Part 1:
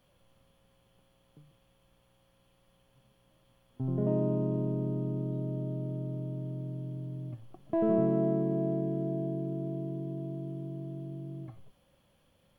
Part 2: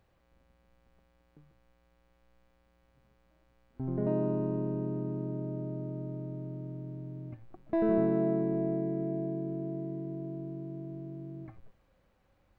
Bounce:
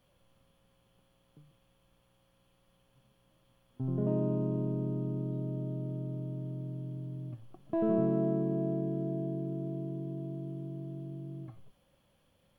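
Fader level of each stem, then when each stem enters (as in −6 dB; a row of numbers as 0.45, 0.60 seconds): −2.0, −18.5 decibels; 0.00, 0.00 seconds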